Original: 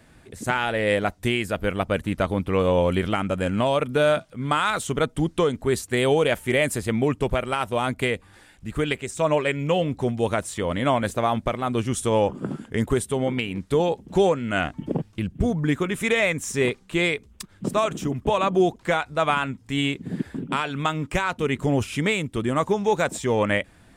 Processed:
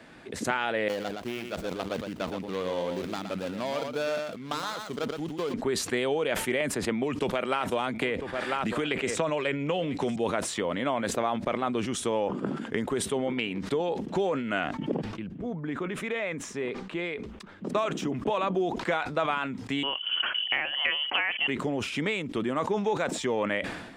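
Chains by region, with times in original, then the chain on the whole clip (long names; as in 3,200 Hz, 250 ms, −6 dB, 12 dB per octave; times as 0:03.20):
0:00.88–0:05.54: running median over 25 samples + first-order pre-emphasis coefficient 0.8 + single-tap delay 118 ms −8 dB
0:06.60–0:10.16: single-tap delay 997 ms −20.5 dB + multiband upward and downward compressor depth 100%
0:15.04–0:17.75: downward compressor 2 to 1, threshold −42 dBFS + high-shelf EQ 3,700 Hz −11 dB
0:19.83–0:21.48: high-pass filter 180 Hz 6 dB per octave + voice inversion scrambler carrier 3,200 Hz
whole clip: downward compressor 5 to 1, threshold −31 dBFS; three-way crossover with the lows and the highs turned down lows −17 dB, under 180 Hz, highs −14 dB, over 5,600 Hz; level that may fall only so fast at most 53 dB per second; level +5.5 dB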